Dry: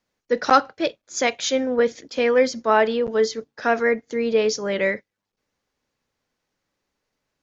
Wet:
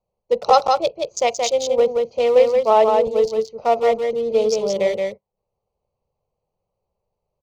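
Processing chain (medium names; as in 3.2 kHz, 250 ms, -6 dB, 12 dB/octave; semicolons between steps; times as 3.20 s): local Wiener filter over 25 samples; static phaser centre 670 Hz, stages 4; on a send: delay 175 ms -4 dB; on the sum: trim +5.5 dB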